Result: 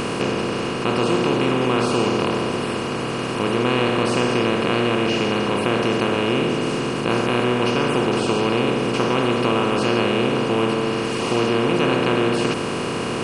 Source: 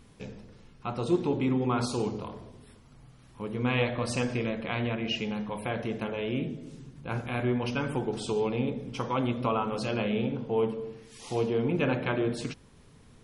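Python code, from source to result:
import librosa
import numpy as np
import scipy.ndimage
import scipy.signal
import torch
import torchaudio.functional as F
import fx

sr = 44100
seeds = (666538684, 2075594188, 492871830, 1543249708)

y = fx.bin_compress(x, sr, power=0.2)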